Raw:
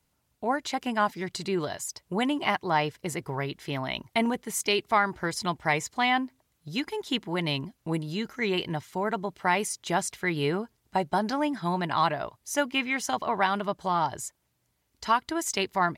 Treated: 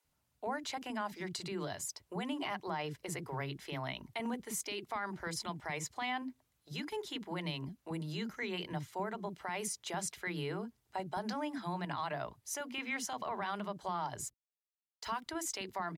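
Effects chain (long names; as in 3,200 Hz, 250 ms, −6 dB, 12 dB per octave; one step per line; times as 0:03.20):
brickwall limiter −22.5 dBFS, peak gain reduction 11.5 dB
0:14.21–0:15.23: centre clipping without the shift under −52 dBFS
multiband delay without the direct sound highs, lows 40 ms, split 320 Hz
level −5.5 dB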